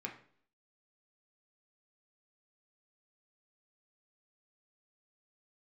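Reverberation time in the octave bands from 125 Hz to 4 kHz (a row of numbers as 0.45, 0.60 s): 0.55, 0.65, 0.60, 0.50, 0.50, 0.50 s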